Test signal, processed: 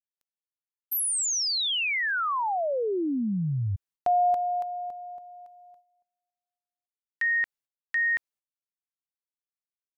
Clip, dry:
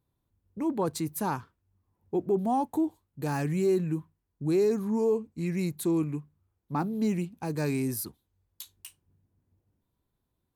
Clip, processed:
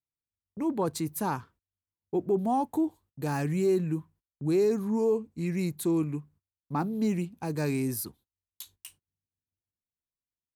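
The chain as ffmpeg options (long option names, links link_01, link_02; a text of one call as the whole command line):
ffmpeg -i in.wav -af "agate=range=-25dB:threshold=-56dB:ratio=16:detection=peak" out.wav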